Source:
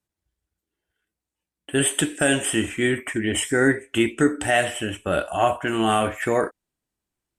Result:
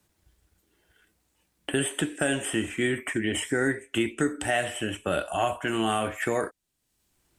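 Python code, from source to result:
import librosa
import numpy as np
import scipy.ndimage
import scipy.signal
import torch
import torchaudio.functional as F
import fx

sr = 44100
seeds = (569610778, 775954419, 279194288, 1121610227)

y = fx.band_squash(x, sr, depth_pct=70)
y = y * 10.0 ** (-6.0 / 20.0)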